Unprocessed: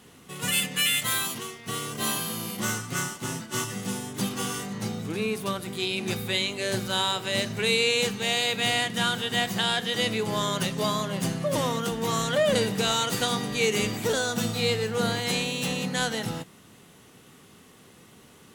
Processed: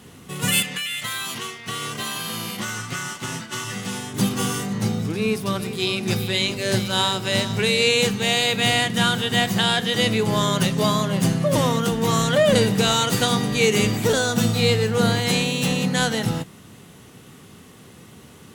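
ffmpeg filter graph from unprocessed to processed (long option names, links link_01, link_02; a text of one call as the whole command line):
ffmpeg -i in.wav -filter_complex "[0:a]asettb=1/sr,asplit=3[link_01][link_02][link_03];[link_01]atrim=end=0.624[link_04];[link_02]atrim=start=0.62:end=4.14,asetpts=PTS-STARTPTS,afade=type=in:duration=0.004:curve=qsin,afade=type=out:start_time=3.516:duration=0.004:curve=qsin,lowpass=frequency=2900:poles=1,tiltshelf=frequency=890:gain=-7,acompressor=threshold=-29dB:ratio=12:attack=3.2:release=140:knee=1:detection=peak[link_05];[link_03]atrim=start=4.136[link_06];[link_04][link_05]acrossfade=duration=0.004:curve1=hsin:curve2=qsin[link_07];[link_07][link_06]acrossfade=duration=0.004:curve1=qsin:curve2=hsin,asettb=1/sr,asplit=3[link_08][link_09][link_10];[link_08]atrim=end=5.024[link_11];[link_09]atrim=start=5.02:end=7.89,asetpts=PTS-STARTPTS,afade=type=in:duration=0.004:curve=qsin,afade=type=out:start_time=2.866:duration=0.004:curve=qsin,equalizer=frequency=5200:width_type=o:width=0.25:gain=6.5,tremolo=f=3.5:d=0.33,aecho=1:1:405:0.251,atrim=end_sample=126567[link_12];[link_10]atrim=start=7.886[link_13];[link_11][link_12]acrossfade=duration=0.004:curve1=hsin:curve2=qsin[link_14];[link_14][link_13]acrossfade=duration=0.004:curve1=qsin:curve2=hsin,highpass=58,lowshelf=frequency=160:gain=9,volume=5dB" out.wav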